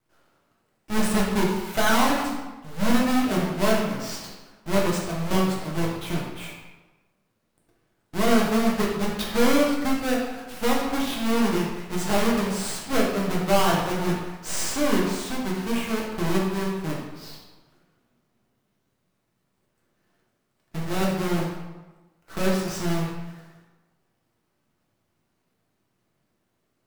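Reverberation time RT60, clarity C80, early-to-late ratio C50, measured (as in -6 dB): 1.2 s, 4.5 dB, 2.0 dB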